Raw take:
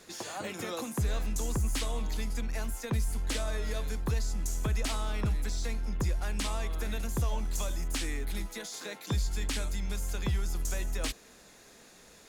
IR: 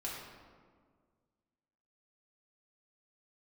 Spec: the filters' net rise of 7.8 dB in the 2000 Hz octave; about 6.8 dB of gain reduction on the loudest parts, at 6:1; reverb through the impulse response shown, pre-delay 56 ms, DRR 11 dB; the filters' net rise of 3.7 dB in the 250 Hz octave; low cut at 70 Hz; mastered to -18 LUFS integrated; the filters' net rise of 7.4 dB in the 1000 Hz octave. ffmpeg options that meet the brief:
-filter_complex "[0:a]highpass=70,equalizer=f=250:t=o:g=4.5,equalizer=f=1k:t=o:g=7,equalizer=f=2k:t=o:g=7.5,acompressor=threshold=-32dB:ratio=6,asplit=2[a][b];[1:a]atrim=start_sample=2205,adelay=56[c];[b][c]afir=irnorm=-1:irlink=0,volume=-12.5dB[d];[a][d]amix=inputs=2:normalize=0,volume=18.5dB"

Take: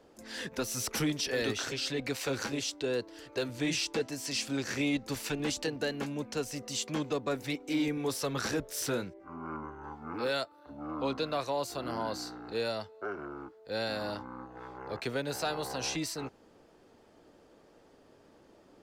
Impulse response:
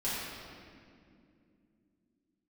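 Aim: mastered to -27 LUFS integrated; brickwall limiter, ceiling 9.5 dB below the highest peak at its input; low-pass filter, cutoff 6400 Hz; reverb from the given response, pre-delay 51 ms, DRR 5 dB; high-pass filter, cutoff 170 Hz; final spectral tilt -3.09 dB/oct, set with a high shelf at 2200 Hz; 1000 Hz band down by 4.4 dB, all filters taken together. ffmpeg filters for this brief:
-filter_complex "[0:a]highpass=170,lowpass=6.4k,equalizer=f=1k:t=o:g=-7,highshelf=f=2.2k:g=4,alimiter=level_in=4dB:limit=-24dB:level=0:latency=1,volume=-4dB,asplit=2[a][b];[1:a]atrim=start_sample=2205,adelay=51[c];[b][c]afir=irnorm=-1:irlink=0,volume=-12dB[d];[a][d]amix=inputs=2:normalize=0,volume=10dB"

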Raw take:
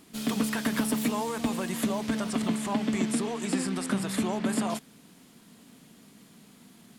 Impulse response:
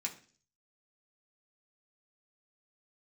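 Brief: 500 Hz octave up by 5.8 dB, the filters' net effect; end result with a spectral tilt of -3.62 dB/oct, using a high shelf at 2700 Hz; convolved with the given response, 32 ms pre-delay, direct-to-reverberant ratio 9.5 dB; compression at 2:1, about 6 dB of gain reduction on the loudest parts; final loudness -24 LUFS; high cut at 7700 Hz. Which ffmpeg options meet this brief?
-filter_complex "[0:a]lowpass=7.7k,equalizer=f=500:t=o:g=7,highshelf=f=2.7k:g=9,acompressor=threshold=-32dB:ratio=2,asplit=2[a][b];[1:a]atrim=start_sample=2205,adelay=32[c];[b][c]afir=irnorm=-1:irlink=0,volume=-10dB[d];[a][d]amix=inputs=2:normalize=0,volume=7.5dB"

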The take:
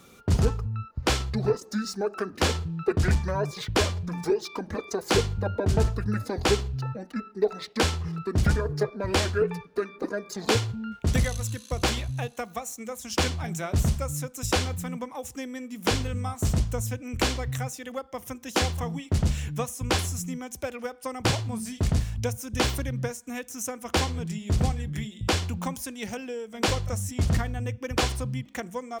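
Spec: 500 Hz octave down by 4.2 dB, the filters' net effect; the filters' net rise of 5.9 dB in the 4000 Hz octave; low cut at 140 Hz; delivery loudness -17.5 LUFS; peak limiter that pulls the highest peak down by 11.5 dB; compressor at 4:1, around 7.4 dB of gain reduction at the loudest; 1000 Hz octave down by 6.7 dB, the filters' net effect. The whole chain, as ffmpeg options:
-af "highpass=140,equalizer=f=500:t=o:g=-3.5,equalizer=f=1k:t=o:g=-8.5,equalizer=f=4k:t=o:g=8,acompressor=threshold=-28dB:ratio=4,volume=18.5dB,alimiter=limit=-6.5dB:level=0:latency=1"

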